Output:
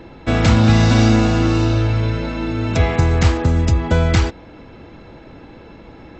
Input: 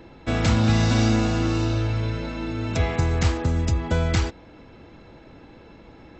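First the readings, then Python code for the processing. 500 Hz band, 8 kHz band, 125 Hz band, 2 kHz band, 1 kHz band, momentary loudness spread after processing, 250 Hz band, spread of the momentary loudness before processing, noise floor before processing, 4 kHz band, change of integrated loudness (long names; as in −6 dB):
+7.0 dB, can't be measured, +7.0 dB, +6.5 dB, +7.0 dB, 9 LU, +7.0 dB, 9 LU, −48 dBFS, +5.5 dB, +7.0 dB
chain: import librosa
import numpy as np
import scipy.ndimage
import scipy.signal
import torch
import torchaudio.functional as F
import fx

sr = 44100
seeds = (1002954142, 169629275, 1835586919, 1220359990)

y = fx.high_shelf(x, sr, hz=5700.0, db=-5.5)
y = y * 10.0 ** (7.0 / 20.0)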